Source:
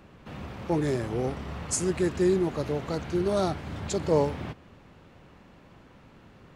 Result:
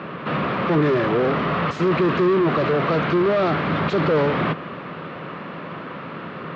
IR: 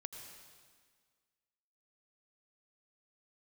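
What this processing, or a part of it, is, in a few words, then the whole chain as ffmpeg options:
overdrive pedal into a guitar cabinet: -filter_complex "[0:a]asplit=2[a][b];[b]highpass=f=720:p=1,volume=34dB,asoftclip=type=tanh:threshold=-11dB[c];[a][c]amix=inputs=2:normalize=0,lowpass=f=1.3k:p=1,volume=-6dB,highpass=110,equalizer=f=160:t=q:w=4:g=8,equalizer=f=820:t=q:w=4:g=-7,equalizer=f=1.2k:t=q:w=4:g=5,lowpass=f=4.1k:w=0.5412,lowpass=f=4.1k:w=1.3066"

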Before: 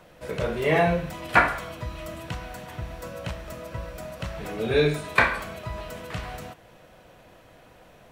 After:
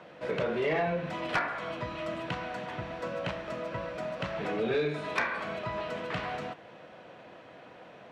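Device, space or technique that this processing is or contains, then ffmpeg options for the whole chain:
AM radio: -af "highpass=180,lowpass=3.5k,acompressor=threshold=-29dB:ratio=4,asoftclip=type=tanh:threshold=-23dB,volume=3dB"

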